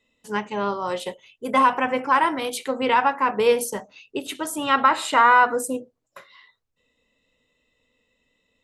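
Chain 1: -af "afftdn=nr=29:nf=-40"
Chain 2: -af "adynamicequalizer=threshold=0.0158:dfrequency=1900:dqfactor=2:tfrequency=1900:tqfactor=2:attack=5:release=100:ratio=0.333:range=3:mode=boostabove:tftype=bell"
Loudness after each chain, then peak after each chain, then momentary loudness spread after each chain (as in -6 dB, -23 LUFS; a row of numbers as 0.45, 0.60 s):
-21.0, -20.0 LUFS; -6.0, -4.0 dBFS; 15, 16 LU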